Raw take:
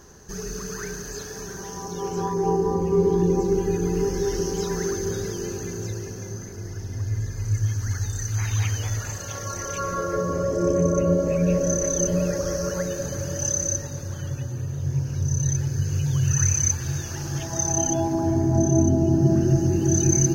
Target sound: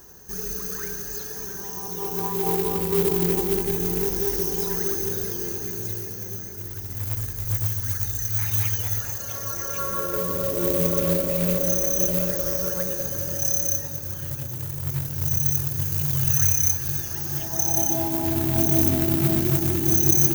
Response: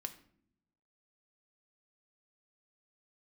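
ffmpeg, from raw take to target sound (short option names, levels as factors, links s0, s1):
-filter_complex "[0:a]acrusher=bits=3:mode=log:mix=0:aa=0.000001,asplit=2[s0][s1];[s1]aemphasis=mode=production:type=riaa[s2];[1:a]atrim=start_sample=2205,highshelf=f=7700:g=9.5[s3];[s2][s3]afir=irnorm=-1:irlink=0,volume=0.355[s4];[s0][s4]amix=inputs=2:normalize=0,volume=0.596"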